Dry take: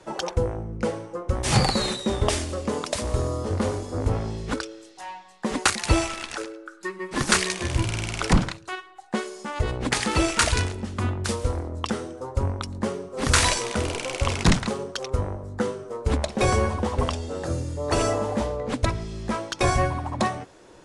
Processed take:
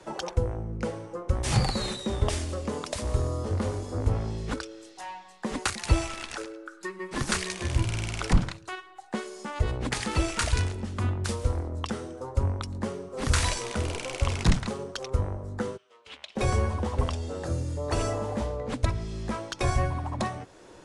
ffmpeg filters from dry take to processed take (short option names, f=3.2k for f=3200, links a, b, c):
-filter_complex "[0:a]asplit=3[a][b][c];[a]afade=t=out:st=15.76:d=0.02[d];[b]bandpass=f=3k:t=q:w=3.3,afade=t=in:st=15.76:d=0.02,afade=t=out:st=16.35:d=0.02[e];[c]afade=t=in:st=16.35:d=0.02[f];[d][e][f]amix=inputs=3:normalize=0,acrossover=split=130[g][h];[h]acompressor=threshold=-39dB:ratio=1.5[i];[g][i]amix=inputs=2:normalize=0"